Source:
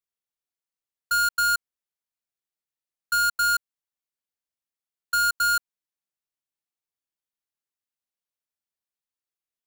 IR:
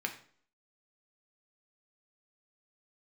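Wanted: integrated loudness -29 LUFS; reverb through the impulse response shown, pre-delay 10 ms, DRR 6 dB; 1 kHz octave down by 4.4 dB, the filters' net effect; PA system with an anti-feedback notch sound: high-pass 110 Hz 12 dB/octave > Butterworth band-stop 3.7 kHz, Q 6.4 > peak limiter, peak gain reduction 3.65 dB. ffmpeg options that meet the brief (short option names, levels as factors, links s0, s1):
-filter_complex "[0:a]equalizer=f=1000:t=o:g=-9,asplit=2[s0][s1];[1:a]atrim=start_sample=2205,adelay=10[s2];[s1][s2]afir=irnorm=-1:irlink=0,volume=0.335[s3];[s0][s3]amix=inputs=2:normalize=0,highpass=110,asuperstop=centerf=3700:order=8:qfactor=6.4,volume=0.841,alimiter=limit=0.0841:level=0:latency=1"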